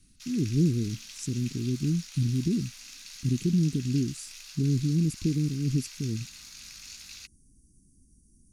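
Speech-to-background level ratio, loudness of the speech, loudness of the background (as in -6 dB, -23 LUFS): 14.0 dB, -29.0 LUFS, -43.0 LUFS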